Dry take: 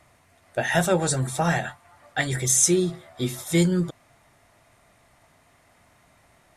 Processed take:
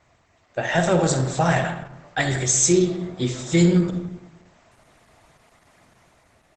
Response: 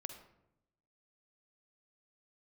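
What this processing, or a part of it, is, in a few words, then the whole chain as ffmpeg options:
speakerphone in a meeting room: -filter_complex "[1:a]atrim=start_sample=2205[link_01];[0:a][link_01]afir=irnorm=-1:irlink=0,asplit=2[link_02][link_03];[link_03]adelay=160,highpass=300,lowpass=3400,asoftclip=type=hard:threshold=-18dB,volume=-16dB[link_04];[link_02][link_04]amix=inputs=2:normalize=0,dynaudnorm=framelen=120:gausssize=13:maxgain=5dB,volume=2.5dB" -ar 48000 -c:a libopus -b:a 12k

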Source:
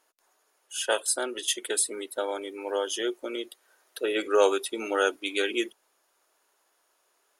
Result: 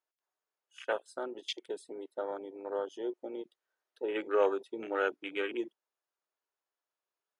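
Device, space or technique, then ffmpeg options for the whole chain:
over-cleaned archive recording: -af "highpass=140,lowpass=5600,afwtdn=0.0282,volume=-6dB"

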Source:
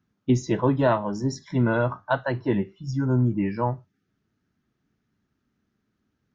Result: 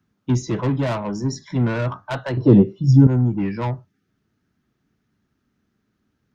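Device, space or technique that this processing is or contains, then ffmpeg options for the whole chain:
one-band saturation: -filter_complex "[0:a]acrossover=split=210|4300[link_01][link_02][link_03];[link_02]asoftclip=type=tanh:threshold=-26.5dB[link_04];[link_01][link_04][link_03]amix=inputs=3:normalize=0,asettb=1/sr,asplit=3[link_05][link_06][link_07];[link_05]atrim=end=2.374[link_08];[link_06]atrim=start=2.37:end=3.07,asetpts=PTS-STARTPTS,afade=type=in:duration=0.004:curve=qsin,afade=type=out:start_time=0.696:duration=0.004:curve=qsin,equalizer=frequency=125:width_type=o:width=1:gain=11,equalizer=frequency=250:width_type=o:width=1:gain=7,equalizer=frequency=500:width_type=o:width=1:gain=12,equalizer=frequency=2000:width_type=o:width=1:gain=-9,equalizer=frequency=4000:width_type=o:width=1:gain=4[link_09];[link_07]atrim=start=3.066[link_10];[link_08][link_09]acrossfade=duration=0.004:curve1=hsin:curve2=qsin[link_11];[link_11][link_10]acrossfade=duration=0.004:curve1=qsin:curve2=hsin,volume=4dB"

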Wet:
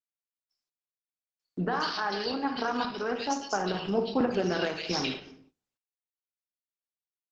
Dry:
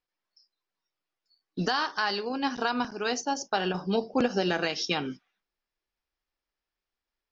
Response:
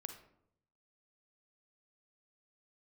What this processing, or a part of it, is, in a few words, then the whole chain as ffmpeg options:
speakerphone in a meeting room: -filter_complex "[0:a]equalizer=frequency=5300:width=7:gain=2.5,acrossover=split=2100[link_01][link_02];[link_02]adelay=140[link_03];[link_01][link_03]amix=inputs=2:normalize=0[link_04];[1:a]atrim=start_sample=2205[link_05];[link_04][link_05]afir=irnorm=-1:irlink=0,asplit=2[link_06][link_07];[link_07]adelay=100,highpass=300,lowpass=3400,asoftclip=type=hard:threshold=-26.5dB,volume=-30dB[link_08];[link_06][link_08]amix=inputs=2:normalize=0,dynaudnorm=framelen=700:gausssize=3:maxgain=4.5dB,agate=range=-20dB:threshold=-58dB:ratio=16:detection=peak,volume=-1dB" -ar 48000 -c:a libopus -b:a 12k

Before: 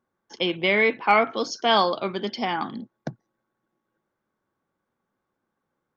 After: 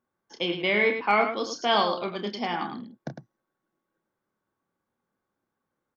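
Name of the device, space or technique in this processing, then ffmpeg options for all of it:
slapback doubling: -filter_complex "[0:a]asplit=3[link_01][link_02][link_03];[link_02]adelay=29,volume=-8dB[link_04];[link_03]adelay=105,volume=-8dB[link_05];[link_01][link_04][link_05]amix=inputs=3:normalize=0,volume=-4dB"

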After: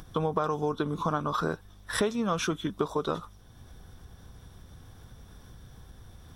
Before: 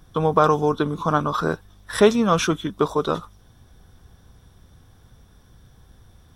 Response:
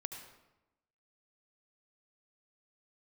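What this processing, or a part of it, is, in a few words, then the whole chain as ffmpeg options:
upward and downward compression: -af "acompressor=mode=upward:threshold=-40dB:ratio=2.5,acompressor=threshold=-23dB:ratio=5,volume=-2dB"

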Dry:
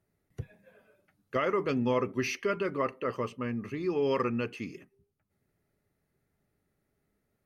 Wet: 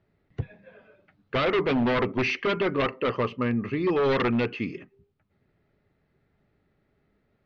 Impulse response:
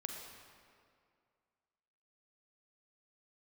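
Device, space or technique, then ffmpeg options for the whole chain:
synthesiser wavefolder: -af "aeval=exprs='0.0501*(abs(mod(val(0)/0.0501+3,4)-2)-1)':channel_layout=same,lowpass=frequency=4000:width=0.5412,lowpass=frequency=4000:width=1.3066,volume=8dB"

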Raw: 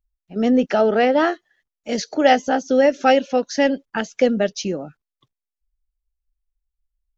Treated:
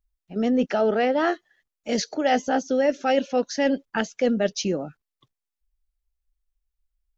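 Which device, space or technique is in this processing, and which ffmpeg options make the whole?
compression on the reversed sound: -af "areverse,acompressor=threshold=-18dB:ratio=5,areverse"

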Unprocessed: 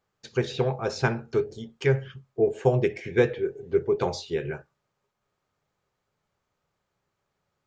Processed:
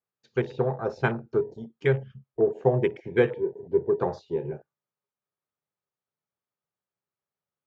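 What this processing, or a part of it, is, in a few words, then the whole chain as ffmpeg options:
over-cleaned archive recording: -af "highpass=110,lowpass=6000,afwtdn=0.0158"

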